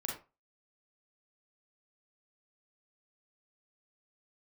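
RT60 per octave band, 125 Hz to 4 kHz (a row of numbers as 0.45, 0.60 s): 0.30, 0.30, 0.30, 0.30, 0.25, 0.20 s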